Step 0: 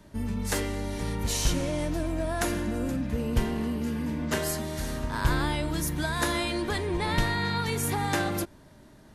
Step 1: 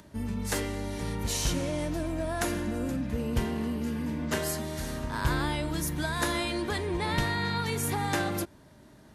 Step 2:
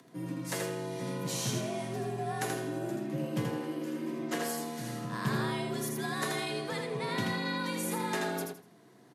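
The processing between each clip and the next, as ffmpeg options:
ffmpeg -i in.wav -af "highpass=46,acompressor=mode=upward:threshold=-49dB:ratio=2.5,volume=-1.5dB" out.wav
ffmpeg -i in.wav -af "afreqshift=78,aecho=1:1:81|162|243|324:0.631|0.164|0.0427|0.0111,volume=-5.5dB" out.wav

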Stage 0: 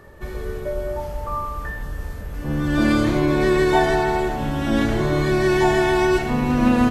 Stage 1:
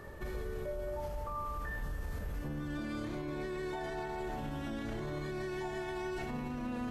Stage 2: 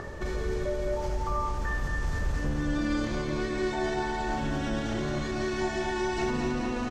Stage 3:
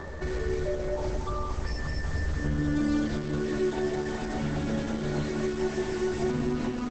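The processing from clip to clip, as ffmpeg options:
ffmpeg -i in.wav -af "areverse,acompressor=threshold=-27dB:ratio=6,areverse,alimiter=level_in=4.5dB:limit=-24dB:level=0:latency=1:release=70,volume=-4.5dB,volume=-2.5dB" out.wav
ffmpeg -i in.wav -filter_complex "[0:a]acrossover=split=2400[link_01][link_02];[link_01]acompressor=mode=upward:threshold=-43dB:ratio=2.5[link_03];[link_02]lowpass=frequency=6400:width_type=q:width=1.9[link_04];[link_03][link_04]amix=inputs=2:normalize=0,aecho=1:1:221|442|663|884|1105|1326|1547|1768|1989:0.596|0.357|0.214|0.129|0.0772|0.0463|0.0278|0.0167|0.01,volume=7.5dB" out.wav
ffmpeg -i in.wav -filter_complex "[0:a]asplit=2[link_01][link_02];[link_02]adelay=13,volume=-3.5dB[link_03];[link_01][link_03]amix=inputs=2:normalize=0,acrossover=split=460|1100[link_04][link_05][link_06];[link_06]aeval=exprs='0.0133*(abs(mod(val(0)/0.0133+3,4)-2)-1)':channel_layout=same[link_07];[link_04][link_05][link_07]amix=inputs=3:normalize=0" -ar 48000 -c:a libopus -b:a 12k out.opus

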